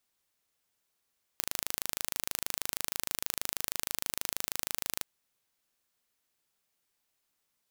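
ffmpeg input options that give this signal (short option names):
-f lavfi -i "aevalsrc='0.596*eq(mod(n,1677),0)':d=3.63:s=44100"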